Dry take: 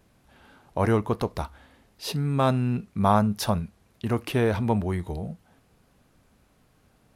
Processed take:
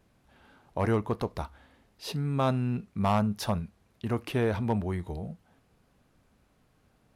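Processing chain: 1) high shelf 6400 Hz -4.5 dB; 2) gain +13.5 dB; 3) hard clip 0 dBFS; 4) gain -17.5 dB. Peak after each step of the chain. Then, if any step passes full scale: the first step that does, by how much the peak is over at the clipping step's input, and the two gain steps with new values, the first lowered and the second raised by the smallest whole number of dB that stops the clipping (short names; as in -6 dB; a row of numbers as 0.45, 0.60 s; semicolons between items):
-7.0, +6.5, 0.0, -17.5 dBFS; step 2, 6.5 dB; step 2 +6.5 dB, step 4 -10.5 dB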